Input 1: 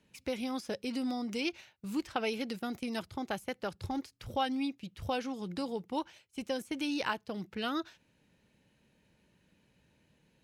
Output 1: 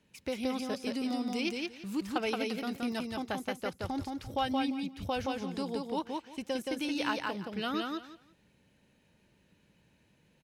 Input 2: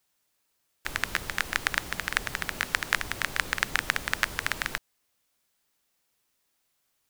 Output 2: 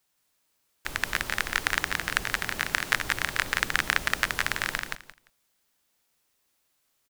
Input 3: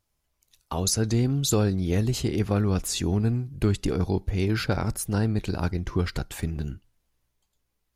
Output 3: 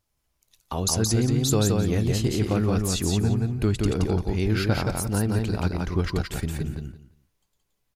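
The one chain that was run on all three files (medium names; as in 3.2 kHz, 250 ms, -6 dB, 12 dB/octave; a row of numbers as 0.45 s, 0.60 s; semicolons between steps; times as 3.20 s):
feedback delay 173 ms, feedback 19%, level -3 dB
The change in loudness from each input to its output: +2.0 LU, +2.0 LU, +1.5 LU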